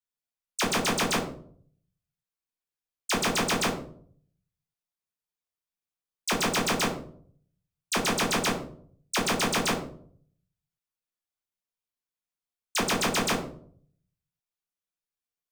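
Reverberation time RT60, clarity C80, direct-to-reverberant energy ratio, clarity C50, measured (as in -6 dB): 0.55 s, 12.0 dB, -2.5 dB, 8.5 dB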